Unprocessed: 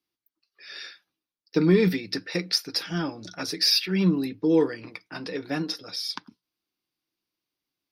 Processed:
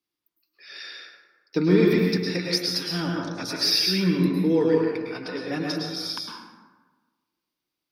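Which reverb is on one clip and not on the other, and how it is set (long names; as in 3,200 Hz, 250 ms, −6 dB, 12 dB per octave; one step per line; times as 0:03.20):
dense smooth reverb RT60 1.3 s, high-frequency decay 0.5×, pre-delay 95 ms, DRR −1.5 dB
level −1.5 dB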